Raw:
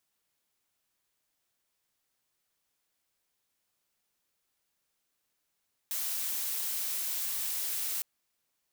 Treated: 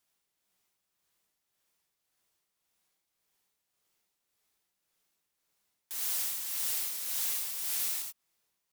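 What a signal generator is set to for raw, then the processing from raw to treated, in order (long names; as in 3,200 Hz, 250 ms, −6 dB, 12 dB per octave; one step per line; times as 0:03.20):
noise blue, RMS −33.5 dBFS 2.11 s
amplitude tremolo 1.8 Hz, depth 53%
reverb whose tail is shaped and stops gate 110 ms rising, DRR 0.5 dB
pitch modulation by a square or saw wave saw up 3.9 Hz, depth 100 cents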